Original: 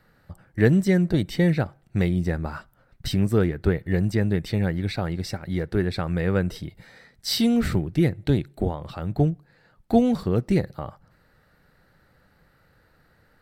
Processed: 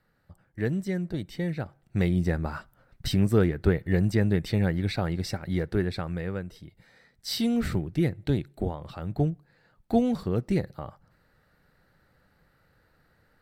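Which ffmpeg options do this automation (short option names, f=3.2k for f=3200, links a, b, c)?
-af "volume=8dB,afade=t=in:st=1.55:d=0.62:silence=0.354813,afade=t=out:st=5.56:d=0.92:silence=0.237137,afade=t=in:st=6.48:d=1.14:silence=0.354813"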